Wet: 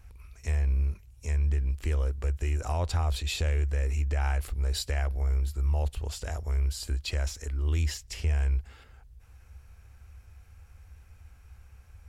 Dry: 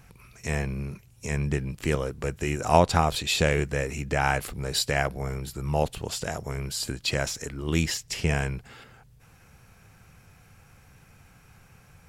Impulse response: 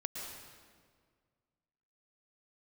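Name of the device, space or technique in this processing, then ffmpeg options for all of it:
car stereo with a boomy subwoofer: -af "lowshelf=f=100:t=q:w=3:g=12,alimiter=limit=-12dB:level=0:latency=1:release=52,volume=-7.5dB"

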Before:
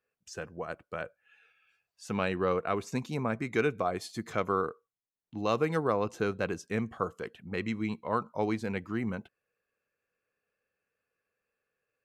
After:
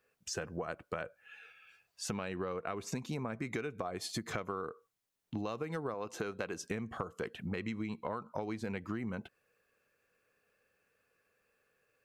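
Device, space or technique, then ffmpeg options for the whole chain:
serial compression, peaks first: -filter_complex "[0:a]asettb=1/sr,asplit=3[a][b][c];[a]atrim=end=5.944[d];[b]atrim=start=5.94:end=6.61,asetpts=PTS-STARTPTS,afade=t=in:d=0.004:c=qsin,afade=t=out:st=0.666:d=0.004:c=qsin,lowshelf=f=200:g=-11[e];[c]atrim=start=6.606[f];[d][e]acrossfade=d=0.004:c1=hsin:c2=qsin[g];[g][f]acrossfade=d=0.004:c1=qsin:c2=hsin,acompressor=threshold=-36dB:ratio=6,acompressor=threshold=-45dB:ratio=3,volume=8.5dB"

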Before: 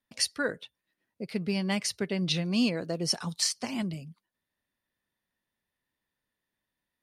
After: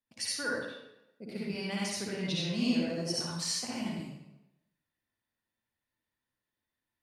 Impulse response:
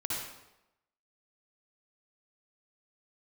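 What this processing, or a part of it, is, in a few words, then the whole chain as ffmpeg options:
bathroom: -filter_complex "[1:a]atrim=start_sample=2205[a];[0:a][a]afir=irnorm=-1:irlink=0,volume=-7.5dB"

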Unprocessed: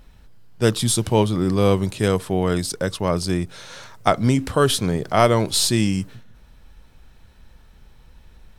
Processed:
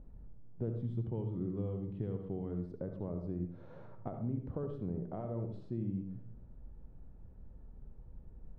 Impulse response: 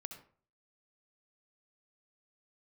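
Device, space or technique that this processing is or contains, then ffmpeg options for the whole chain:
television next door: -filter_complex "[0:a]asettb=1/sr,asplit=3[a][b][c];[a]atrim=end=0.844[d];[b]atrim=start=0.84:end=2.51,asetpts=PTS-STARTPTS,afade=t=in:d=0.004:c=qsin,afade=t=out:st=1.666:d=0.004:c=qsin,equalizer=f=125:t=o:w=0.33:g=5,equalizer=f=630:t=o:w=0.33:g=-6,equalizer=f=2k:t=o:w=0.33:g=6,equalizer=f=3.15k:t=o:w=0.33:g=11[e];[c]atrim=start=2.506[f];[d][e]acrossfade=d=0.004:c1=hsin:c2=qsin[g];[g][f]acrossfade=d=0.004:c1=qsin:c2=hsin,acompressor=threshold=-32dB:ratio=5,lowpass=490[h];[1:a]atrim=start_sample=2205[i];[h][i]afir=irnorm=-1:irlink=0,volume=1dB"

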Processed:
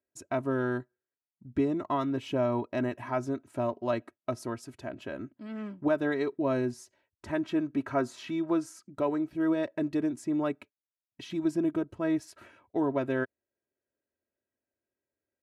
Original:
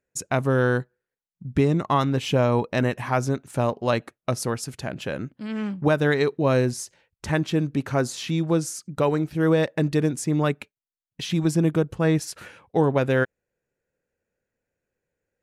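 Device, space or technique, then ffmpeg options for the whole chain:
through cloth: -filter_complex "[0:a]highpass=99,asettb=1/sr,asplit=3[a][b][c];[a]atrim=end=7.434[d];[b]atrim=start=7.43:end=8.87,asetpts=PTS-STARTPTS,afade=t=in:d=0.004:c=qsin,afade=t=out:st=1.436:d=0.004:c=qsin,equalizer=f=1.3k:w=0.62:g=5.5[e];[c]atrim=start=8.866[f];[d][e]acrossfade=d=0.004:c1=hsin:c2=qsin[g];[g][f]acrossfade=d=0.004:c1=qsin:c2=hsin,highshelf=f=2.4k:g=-11.5,aecho=1:1:3.1:0.74,volume=-8dB"

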